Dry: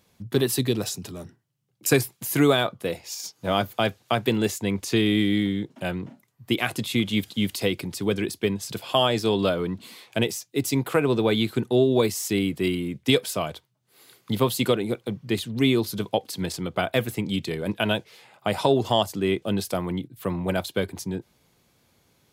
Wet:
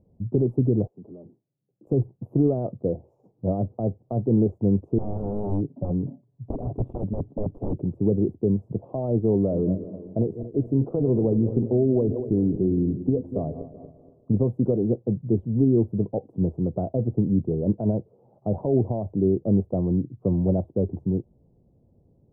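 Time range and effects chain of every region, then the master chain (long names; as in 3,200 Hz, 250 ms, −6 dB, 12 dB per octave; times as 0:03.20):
0:00.87–0:01.87: high-pass filter 280 Hz + downward compressor 8 to 1, threshold −41 dBFS
0:04.98–0:07.77: comb filter 7.1 ms, depth 45% + wrap-around overflow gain 21.5 dB
0:09.37–0:14.34: feedback delay that plays each chunk backwards 118 ms, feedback 61%, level −13.5 dB + downward compressor 2.5 to 1, threshold −22 dBFS + single-tap delay 383 ms −20 dB
whole clip: brickwall limiter −15 dBFS; inverse Chebyshev low-pass filter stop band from 1,700 Hz, stop band 50 dB; spectral tilt −2.5 dB per octave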